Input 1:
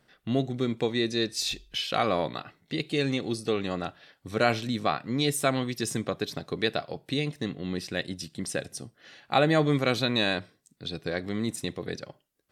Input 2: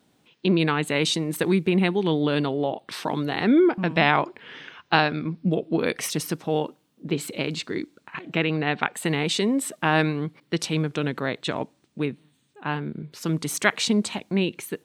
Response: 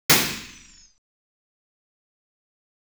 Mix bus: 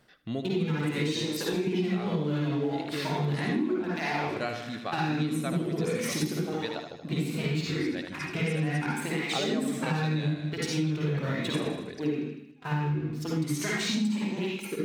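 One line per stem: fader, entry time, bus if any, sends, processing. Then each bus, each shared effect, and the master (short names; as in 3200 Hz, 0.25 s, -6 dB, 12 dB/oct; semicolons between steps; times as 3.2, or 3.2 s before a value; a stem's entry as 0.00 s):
+2.5 dB, 0.00 s, no send, echo send -17.5 dB, reverb removal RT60 0.59 s; auto duck -11 dB, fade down 0.40 s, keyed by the second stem
-14.0 dB, 0.00 s, send -19.5 dB, no echo send, sample leveller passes 3; compressor, threshold -13 dBFS, peak gain reduction 7 dB; tape flanging out of phase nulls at 0.38 Hz, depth 5.7 ms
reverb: on, RT60 0.70 s, pre-delay 46 ms
echo: feedback echo 78 ms, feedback 57%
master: compressor 6:1, threshold -25 dBFS, peak gain reduction 11 dB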